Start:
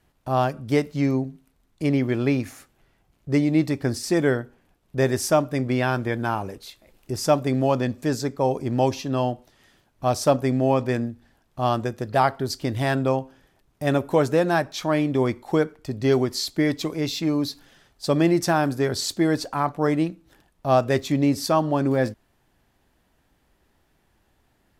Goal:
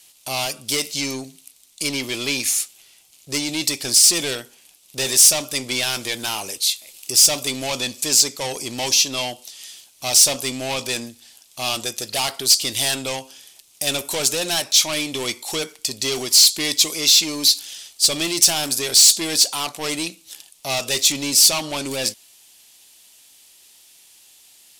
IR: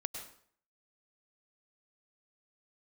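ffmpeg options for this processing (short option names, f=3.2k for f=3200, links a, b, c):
-filter_complex "[0:a]equalizer=f=9.2k:t=o:w=1.5:g=8.5,asplit=2[a][b];[b]highpass=f=720:p=1,volume=22dB,asoftclip=type=tanh:threshold=-6.5dB[c];[a][c]amix=inputs=2:normalize=0,lowpass=f=6.3k:p=1,volume=-6dB,aexciter=amount=6.5:drive=6.3:freq=2.4k,volume=-12.5dB"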